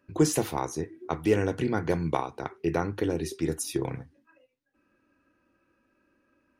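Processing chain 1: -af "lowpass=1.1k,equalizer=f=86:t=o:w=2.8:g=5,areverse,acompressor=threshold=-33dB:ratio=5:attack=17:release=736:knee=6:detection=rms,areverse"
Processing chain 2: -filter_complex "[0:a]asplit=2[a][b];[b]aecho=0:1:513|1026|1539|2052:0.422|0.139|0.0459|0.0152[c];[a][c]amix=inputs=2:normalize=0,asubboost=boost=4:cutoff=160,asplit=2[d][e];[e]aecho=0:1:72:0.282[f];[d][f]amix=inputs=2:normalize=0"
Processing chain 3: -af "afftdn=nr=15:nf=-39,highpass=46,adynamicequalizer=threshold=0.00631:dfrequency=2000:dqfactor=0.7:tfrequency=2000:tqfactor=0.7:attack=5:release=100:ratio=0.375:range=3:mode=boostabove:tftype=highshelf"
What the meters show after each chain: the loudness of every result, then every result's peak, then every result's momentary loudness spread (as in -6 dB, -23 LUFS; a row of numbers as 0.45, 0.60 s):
-40.0, -28.0, -28.5 LUFS; -22.0, -10.0, -10.5 dBFS; 6, 13, 11 LU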